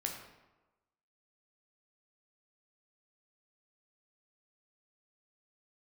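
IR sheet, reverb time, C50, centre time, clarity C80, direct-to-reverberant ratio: 1.1 s, 5.0 dB, 36 ms, 7.0 dB, 1.0 dB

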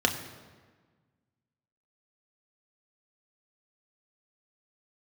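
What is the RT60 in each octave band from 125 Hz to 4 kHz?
1.9, 1.8, 1.5, 1.4, 1.3, 1.0 s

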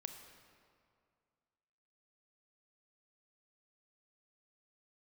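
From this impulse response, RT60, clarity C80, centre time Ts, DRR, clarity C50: 2.2 s, 7.5 dB, 37 ms, 5.5 dB, 6.5 dB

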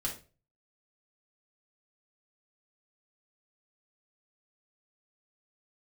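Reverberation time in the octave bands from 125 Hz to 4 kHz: 0.55, 0.40, 0.40, 0.30, 0.30, 0.30 s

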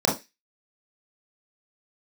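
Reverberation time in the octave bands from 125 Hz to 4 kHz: 0.15, 0.20, 0.25, 0.20, 0.30, 0.35 s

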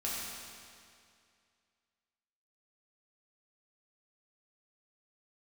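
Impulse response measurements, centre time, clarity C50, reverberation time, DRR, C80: 0.14 s, -2.0 dB, 2.3 s, -7.0 dB, -0.5 dB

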